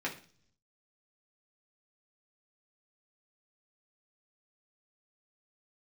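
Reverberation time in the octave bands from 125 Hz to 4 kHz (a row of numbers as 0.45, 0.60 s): 1.0, 0.75, 0.50, 0.40, 0.40, 0.60 s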